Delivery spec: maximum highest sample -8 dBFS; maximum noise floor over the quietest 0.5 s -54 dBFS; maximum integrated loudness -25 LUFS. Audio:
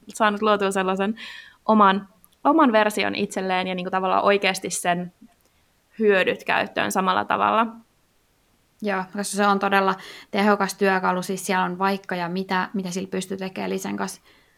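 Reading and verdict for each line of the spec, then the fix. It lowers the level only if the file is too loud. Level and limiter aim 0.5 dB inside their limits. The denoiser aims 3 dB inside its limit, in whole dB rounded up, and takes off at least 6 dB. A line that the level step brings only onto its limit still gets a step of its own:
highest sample -5.0 dBFS: fail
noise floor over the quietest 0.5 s -63 dBFS: pass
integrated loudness -22.0 LUFS: fail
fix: trim -3.5 dB

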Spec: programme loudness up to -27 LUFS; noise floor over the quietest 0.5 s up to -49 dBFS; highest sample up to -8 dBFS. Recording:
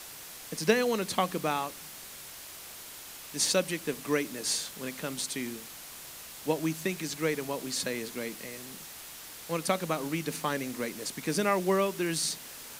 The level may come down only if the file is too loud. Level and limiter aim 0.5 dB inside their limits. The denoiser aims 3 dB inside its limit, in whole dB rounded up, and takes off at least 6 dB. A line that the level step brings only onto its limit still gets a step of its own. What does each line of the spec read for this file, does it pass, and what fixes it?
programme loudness -31.0 LUFS: pass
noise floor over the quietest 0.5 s -46 dBFS: fail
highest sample -9.5 dBFS: pass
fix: noise reduction 6 dB, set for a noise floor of -46 dBFS

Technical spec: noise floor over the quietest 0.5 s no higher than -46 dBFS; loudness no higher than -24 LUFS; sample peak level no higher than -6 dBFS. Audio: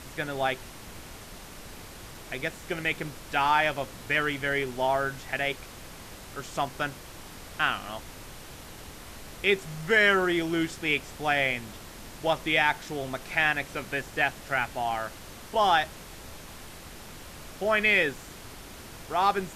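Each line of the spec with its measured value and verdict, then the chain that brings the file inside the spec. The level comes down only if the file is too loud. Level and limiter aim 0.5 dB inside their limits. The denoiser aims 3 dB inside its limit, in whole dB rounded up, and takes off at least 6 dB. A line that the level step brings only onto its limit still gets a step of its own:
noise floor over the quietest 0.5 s -44 dBFS: fail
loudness -27.0 LUFS: pass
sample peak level -10.0 dBFS: pass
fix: noise reduction 6 dB, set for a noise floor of -44 dBFS

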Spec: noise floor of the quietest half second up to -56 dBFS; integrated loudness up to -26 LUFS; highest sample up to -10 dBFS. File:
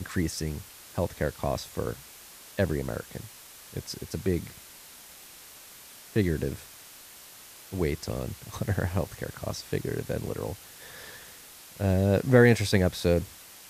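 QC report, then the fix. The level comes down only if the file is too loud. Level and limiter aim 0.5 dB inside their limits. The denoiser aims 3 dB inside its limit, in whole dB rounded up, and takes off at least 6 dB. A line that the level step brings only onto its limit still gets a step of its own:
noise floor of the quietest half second -49 dBFS: fail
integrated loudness -28.5 LUFS: pass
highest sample -7.5 dBFS: fail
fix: noise reduction 10 dB, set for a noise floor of -49 dBFS; peak limiter -10.5 dBFS

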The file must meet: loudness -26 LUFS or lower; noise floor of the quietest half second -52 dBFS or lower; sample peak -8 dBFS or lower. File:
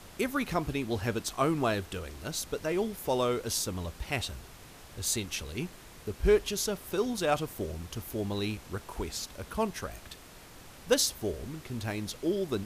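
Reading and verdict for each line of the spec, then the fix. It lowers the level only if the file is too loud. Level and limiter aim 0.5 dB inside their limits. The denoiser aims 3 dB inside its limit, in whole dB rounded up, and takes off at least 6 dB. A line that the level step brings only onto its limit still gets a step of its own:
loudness -32.0 LUFS: pass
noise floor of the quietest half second -51 dBFS: fail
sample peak -11.5 dBFS: pass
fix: noise reduction 6 dB, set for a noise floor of -51 dBFS

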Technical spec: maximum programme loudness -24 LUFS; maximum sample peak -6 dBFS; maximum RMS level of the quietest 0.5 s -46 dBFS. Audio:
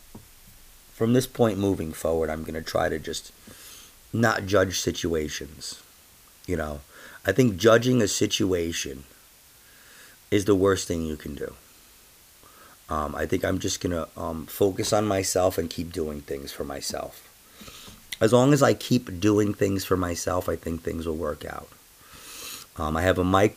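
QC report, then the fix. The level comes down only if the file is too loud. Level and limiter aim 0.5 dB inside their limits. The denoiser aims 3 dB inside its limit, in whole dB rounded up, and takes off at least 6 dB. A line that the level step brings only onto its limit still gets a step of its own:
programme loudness -25.0 LUFS: pass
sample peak -5.5 dBFS: fail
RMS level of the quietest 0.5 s -54 dBFS: pass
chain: peak limiter -6.5 dBFS

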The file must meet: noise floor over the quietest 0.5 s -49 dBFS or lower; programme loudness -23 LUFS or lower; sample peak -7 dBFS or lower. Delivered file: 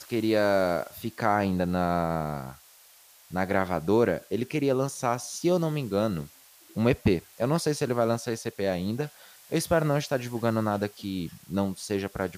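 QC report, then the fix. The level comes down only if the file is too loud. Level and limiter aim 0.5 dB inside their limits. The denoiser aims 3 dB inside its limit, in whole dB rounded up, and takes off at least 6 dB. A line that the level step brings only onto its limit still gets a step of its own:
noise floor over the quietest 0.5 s -55 dBFS: pass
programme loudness -27.5 LUFS: pass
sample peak -8.5 dBFS: pass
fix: none needed

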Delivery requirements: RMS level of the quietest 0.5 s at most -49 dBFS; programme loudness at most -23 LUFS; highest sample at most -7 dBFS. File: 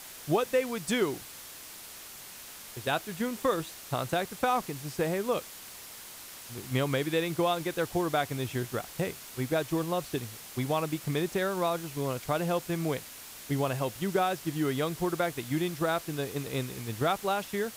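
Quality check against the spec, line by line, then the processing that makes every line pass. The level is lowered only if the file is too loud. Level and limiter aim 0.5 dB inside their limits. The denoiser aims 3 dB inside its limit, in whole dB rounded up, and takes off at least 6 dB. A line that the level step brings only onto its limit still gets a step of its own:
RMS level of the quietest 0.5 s -46 dBFS: fail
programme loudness -31.0 LUFS: pass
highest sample -13.5 dBFS: pass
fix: noise reduction 6 dB, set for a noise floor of -46 dBFS

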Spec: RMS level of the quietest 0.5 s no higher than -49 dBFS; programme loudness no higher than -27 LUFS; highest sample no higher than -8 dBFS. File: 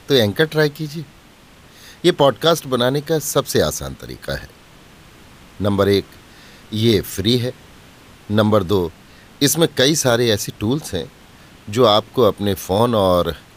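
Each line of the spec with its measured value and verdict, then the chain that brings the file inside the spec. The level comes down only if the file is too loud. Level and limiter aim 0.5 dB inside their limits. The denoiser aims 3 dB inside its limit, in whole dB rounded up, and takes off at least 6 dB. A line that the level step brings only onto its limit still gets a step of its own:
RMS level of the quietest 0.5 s -46 dBFS: fail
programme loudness -18.0 LUFS: fail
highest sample -1.5 dBFS: fail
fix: trim -9.5 dB

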